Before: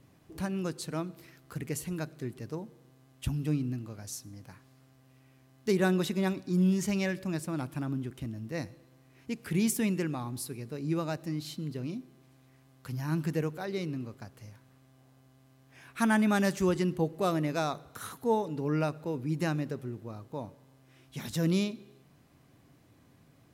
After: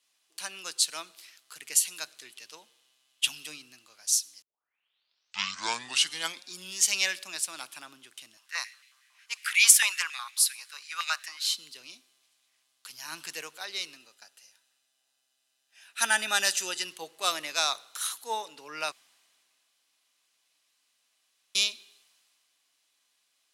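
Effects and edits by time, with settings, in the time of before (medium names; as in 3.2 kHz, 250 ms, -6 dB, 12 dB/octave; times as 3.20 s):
2.25–3.44 s: peaking EQ 3 kHz +6.5 dB
4.42 s: tape start 2.10 s
8.37–11.55 s: step-sequenced high-pass 11 Hz 970–2200 Hz
13.96–16.86 s: comb of notches 1.1 kHz
18.92–21.55 s: room tone
whole clip: high-pass 1.2 kHz 12 dB/octave; high-order bell 5.4 kHz +10 dB 2.3 oct; three bands expanded up and down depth 40%; trim +4 dB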